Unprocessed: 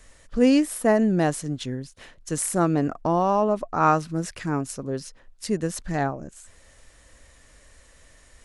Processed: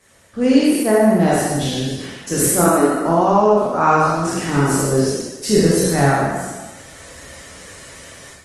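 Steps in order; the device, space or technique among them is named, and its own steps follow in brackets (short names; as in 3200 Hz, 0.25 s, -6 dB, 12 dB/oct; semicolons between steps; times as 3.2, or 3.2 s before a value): spectral trails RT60 1.16 s; 2.64–3.07 HPF 250 Hz 24 dB/oct; far-field microphone of a smart speaker (reverb RT60 0.75 s, pre-delay 23 ms, DRR -3 dB; HPF 110 Hz 12 dB/oct; AGC gain up to 12 dB; gain -1 dB; Opus 20 kbps 48000 Hz)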